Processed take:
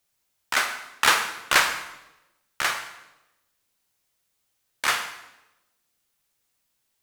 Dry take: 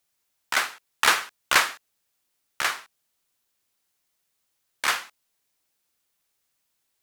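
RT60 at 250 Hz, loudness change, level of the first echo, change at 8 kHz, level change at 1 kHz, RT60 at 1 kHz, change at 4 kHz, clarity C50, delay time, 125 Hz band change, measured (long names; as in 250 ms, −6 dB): 1.0 s, +0.5 dB, no echo audible, +1.0 dB, +1.0 dB, 0.90 s, +1.0 dB, 9.0 dB, no echo audible, can't be measured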